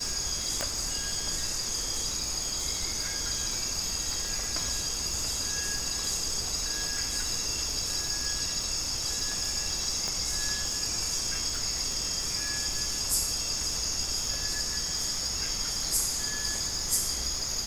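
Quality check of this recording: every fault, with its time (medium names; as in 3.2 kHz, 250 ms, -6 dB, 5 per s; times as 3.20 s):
crackle 290 per s -37 dBFS
0.61 s: pop -13 dBFS
10.08 s: pop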